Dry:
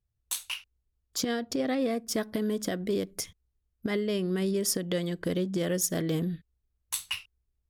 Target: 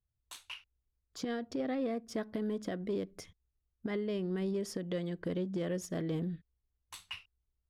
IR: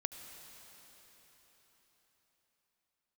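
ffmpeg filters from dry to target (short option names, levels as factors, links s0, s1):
-af "asoftclip=type=tanh:threshold=0.126,aemphasis=mode=reproduction:type=75fm,volume=0.501"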